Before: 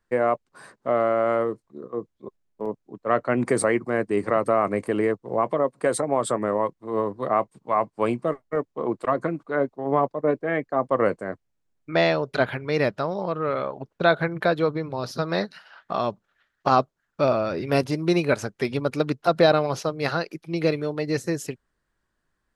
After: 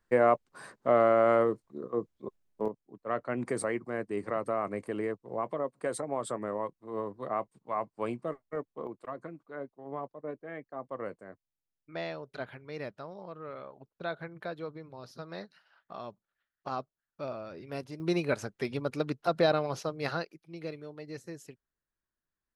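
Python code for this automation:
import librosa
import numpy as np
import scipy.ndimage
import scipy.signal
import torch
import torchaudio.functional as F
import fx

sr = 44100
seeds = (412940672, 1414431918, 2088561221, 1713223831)

y = fx.gain(x, sr, db=fx.steps((0.0, -1.5), (2.68, -10.5), (8.87, -17.0), (18.0, -8.0), (20.25, -17.0)))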